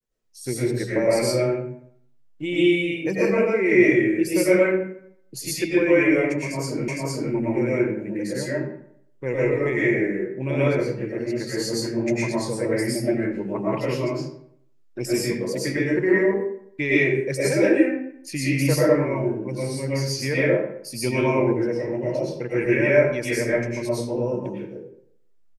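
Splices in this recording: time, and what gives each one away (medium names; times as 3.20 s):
6.88 s: repeat of the last 0.46 s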